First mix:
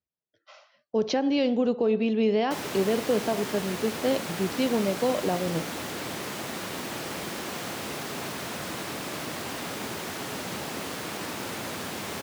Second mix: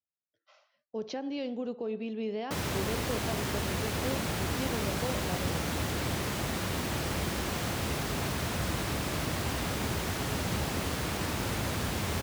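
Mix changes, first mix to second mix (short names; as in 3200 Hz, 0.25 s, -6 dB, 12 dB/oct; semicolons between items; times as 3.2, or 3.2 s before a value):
speech -11.0 dB; background: remove HPF 210 Hz 12 dB/oct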